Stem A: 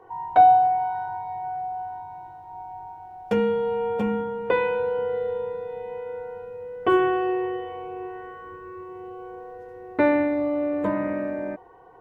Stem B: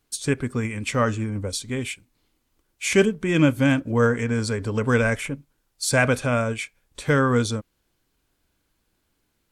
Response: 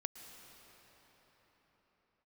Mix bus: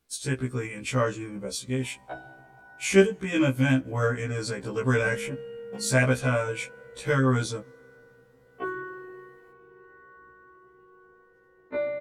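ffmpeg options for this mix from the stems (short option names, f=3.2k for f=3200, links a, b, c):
-filter_complex "[0:a]adelay=1750,volume=-10dB,asplit=2[a][b];[b]volume=-11.5dB[c];[1:a]volume=-2dB,asplit=2[d][e];[e]volume=-23dB[f];[2:a]atrim=start_sample=2205[g];[c][f]amix=inputs=2:normalize=0[h];[h][g]afir=irnorm=-1:irlink=0[i];[a][d][i]amix=inputs=3:normalize=0,afftfilt=real='re*1.73*eq(mod(b,3),0)':imag='im*1.73*eq(mod(b,3),0)':win_size=2048:overlap=0.75"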